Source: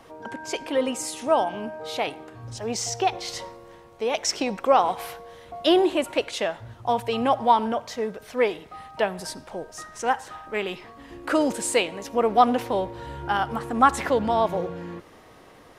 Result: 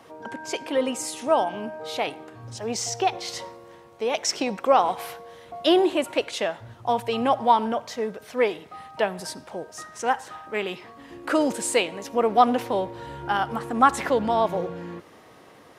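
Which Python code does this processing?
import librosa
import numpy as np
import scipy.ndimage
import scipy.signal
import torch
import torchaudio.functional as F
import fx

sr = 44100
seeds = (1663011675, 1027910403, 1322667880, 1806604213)

y = scipy.signal.sosfilt(scipy.signal.butter(2, 99.0, 'highpass', fs=sr, output='sos'), x)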